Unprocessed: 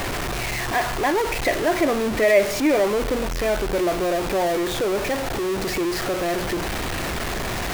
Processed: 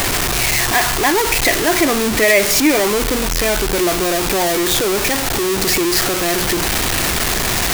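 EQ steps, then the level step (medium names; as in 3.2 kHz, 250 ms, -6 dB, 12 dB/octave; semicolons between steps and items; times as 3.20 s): treble shelf 3.6 kHz +11.5 dB; dynamic bell 570 Hz, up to -7 dB, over -35 dBFS, Q 2.9; +6.0 dB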